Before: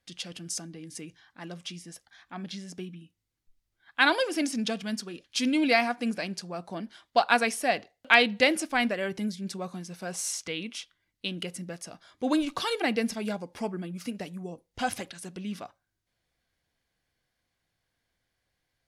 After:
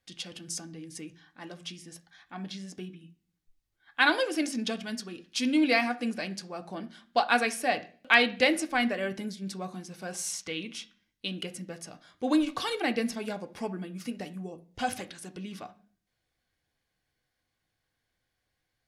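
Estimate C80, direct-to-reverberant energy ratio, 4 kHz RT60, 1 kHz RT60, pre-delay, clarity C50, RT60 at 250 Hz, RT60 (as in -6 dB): 22.0 dB, 6.5 dB, 0.50 s, 0.40 s, 3 ms, 17.5 dB, 0.65 s, 0.45 s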